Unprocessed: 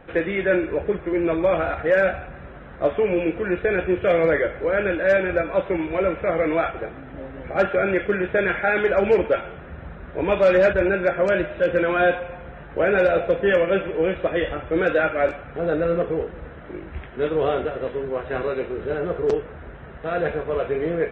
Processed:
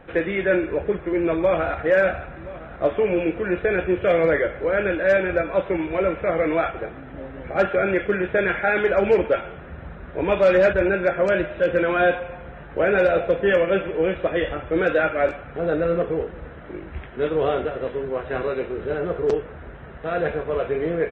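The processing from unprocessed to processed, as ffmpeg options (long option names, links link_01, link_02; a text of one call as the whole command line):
ffmpeg -i in.wav -filter_complex "[0:a]asplit=2[link_01][link_02];[link_02]afade=type=in:start_time=1.34:duration=0.01,afade=type=out:start_time=1.84:duration=0.01,aecho=0:1:510|1020|1530|2040|2550|3060|3570|4080|4590:0.177828|0.12448|0.0871357|0.060995|0.0426965|0.0298875|0.0209213|0.0146449|0.0102514[link_03];[link_01][link_03]amix=inputs=2:normalize=0" out.wav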